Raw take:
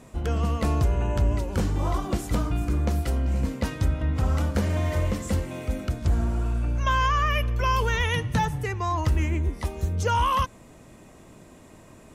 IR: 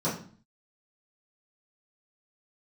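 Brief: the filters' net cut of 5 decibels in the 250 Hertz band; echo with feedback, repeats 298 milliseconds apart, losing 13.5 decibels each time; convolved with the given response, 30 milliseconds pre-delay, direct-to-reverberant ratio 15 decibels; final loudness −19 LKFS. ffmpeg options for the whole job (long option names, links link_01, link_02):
-filter_complex "[0:a]equalizer=frequency=250:width_type=o:gain=-7,aecho=1:1:298|596:0.211|0.0444,asplit=2[link_01][link_02];[1:a]atrim=start_sample=2205,adelay=30[link_03];[link_02][link_03]afir=irnorm=-1:irlink=0,volume=-25dB[link_04];[link_01][link_04]amix=inputs=2:normalize=0,volume=7dB"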